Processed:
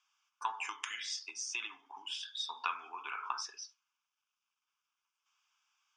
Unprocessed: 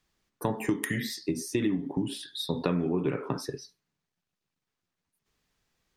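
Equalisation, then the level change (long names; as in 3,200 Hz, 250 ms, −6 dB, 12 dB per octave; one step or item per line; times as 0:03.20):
high-pass filter 920 Hz 24 dB per octave
low-pass filter 6,300 Hz 24 dB per octave
phaser with its sweep stopped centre 2,800 Hz, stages 8
+4.5 dB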